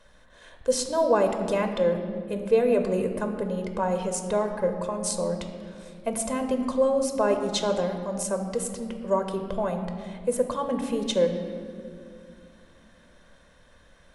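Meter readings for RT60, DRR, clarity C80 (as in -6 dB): 2.3 s, 5.5 dB, 8.0 dB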